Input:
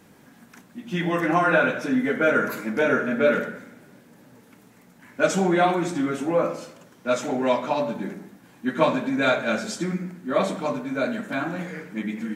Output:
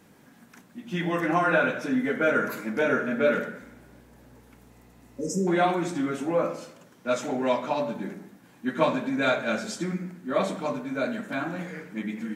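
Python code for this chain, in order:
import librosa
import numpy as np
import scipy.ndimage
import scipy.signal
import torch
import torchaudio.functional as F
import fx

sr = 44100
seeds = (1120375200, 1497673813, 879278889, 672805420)

y = fx.dmg_buzz(x, sr, base_hz=60.0, harmonics=18, level_db=-54.0, tilt_db=-5, odd_only=False, at=(3.61, 5.29), fade=0.02)
y = fx.spec_repair(y, sr, seeds[0], start_s=4.75, length_s=0.7, low_hz=580.0, high_hz=4900.0, source='before')
y = F.gain(torch.from_numpy(y), -3.0).numpy()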